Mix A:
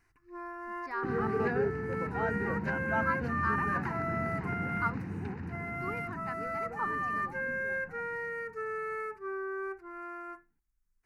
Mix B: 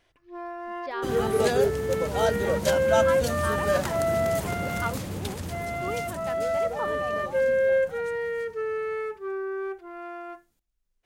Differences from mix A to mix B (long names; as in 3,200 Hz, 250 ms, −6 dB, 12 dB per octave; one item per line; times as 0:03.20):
second sound: remove loudspeaker in its box 120–2,800 Hz, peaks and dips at 560 Hz +4 dB, 1,200 Hz −10 dB, 2,200 Hz −4 dB
master: remove phaser with its sweep stopped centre 1,400 Hz, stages 4